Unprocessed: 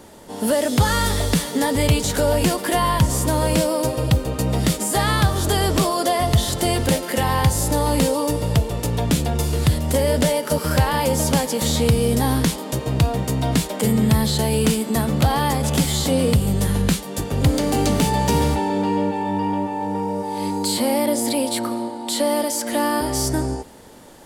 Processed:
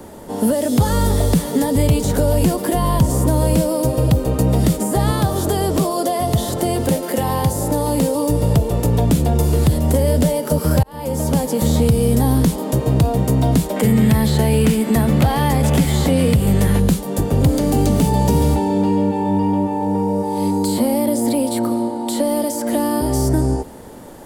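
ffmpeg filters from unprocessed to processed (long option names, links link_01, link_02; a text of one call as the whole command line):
ffmpeg -i in.wav -filter_complex "[0:a]asettb=1/sr,asplit=3[link_01][link_02][link_03];[link_01]atrim=end=5.114[link_04];[link_02]atrim=start=5.11:end=8.15,asetpts=PTS-STARTPTS,afade=type=in:duration=0.004:curve=qsin,afade=type=out:start_time=3.036:duration=0.004:curve=qsin,highpass=frequency=230:poles=1[link_05];[link_03]atrim=start=8.146[link_06];[link_04][link_05]acrossfade=duration=0.004:curve1=hsin:curve2=qsin[link_07];[link_07][link_06]acrossfade=duration=0.004:curve1=qsin:curve2=hsin,asettb=1/sr,asplit=3[link_08][link_09][link_10];[link_08]atrim=end=13.764[link_11];[link_09]atrim=start=13.76:end=16.8,asetpts=PTS-STARTPTS,afade=type=in:duration=0.004:curve=qsin,afade=type=out:start_time=3.036:duration=0.004:curve=qsin,equalizer=frequency=2000:width=1:gain=12.5[link_12];[link_10]atrim=start=16.796[link_13];[link_11][link_12]acrossfade=duration=0.004:curve1=hsin:curve2=qsin[link_14];[link_14][link_13]acrossfade=duration=0.004:curve1=qsin:curve2=hsin,asplit=2[link_15][link_16];[link_15]atrim=end=10.83,asetpts=PTS-STARTPTS,afade=type=out:start_time=10.826:duration=0.004:curve=hsin[link_17];[link_16]atrim=start=10.83,asetpts=PTS-STARTPTS,afade=type=in:duration=0.81[link_18];[link_17][link_18]concat=n=2:v=0:a=1,acontrast=23,equalizer=frequency=4100:width=0.38:gain=-9,acrossover=split=210|1000|2700[link_19][link_20][link_21][link_22];[link_19]acompressor=threshold=-17dB:ratio=4[link_23];[link_20]acompressor=threshold=-22dB:ratio=4[link_24];[link_21]acompressor=threshold=-43dB:ratio=4[link_25];[link_22]acompressor=threshold=-31dB:ratio=4[link_26];[link_23][link_24][link_25][link_26]amix=inputs=4:normalize=0,volume=3.5dB" out.wav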